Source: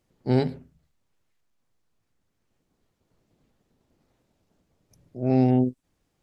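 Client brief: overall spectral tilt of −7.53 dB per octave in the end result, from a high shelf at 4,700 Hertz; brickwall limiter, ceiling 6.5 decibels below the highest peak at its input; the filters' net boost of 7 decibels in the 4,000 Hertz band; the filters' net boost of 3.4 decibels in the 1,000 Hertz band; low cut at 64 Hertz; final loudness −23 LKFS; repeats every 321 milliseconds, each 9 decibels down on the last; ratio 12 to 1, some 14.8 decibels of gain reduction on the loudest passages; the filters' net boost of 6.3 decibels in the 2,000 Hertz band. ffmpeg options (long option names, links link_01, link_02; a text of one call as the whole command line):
ffmpeg -i in.wav -af "highpass=64,equalizer=frequency=1000:width_type=o:gain=4,equalizer=frequency=2000:width_type=o:gain=4.5,equalizer=frequency=4000:width_type=o:gain=3.5,highshelf=frequency=4700:gain=7,acompressor=threshold=-30dB:ratio=12,alimiter=level_in=2.5dB:limit=-24dB:level=0:latency=1,volume=-2.5dB,aecho=1:1:321|642|963|1284:0.355|0.124|0.0435|0.0152,volume=17dB" out.wav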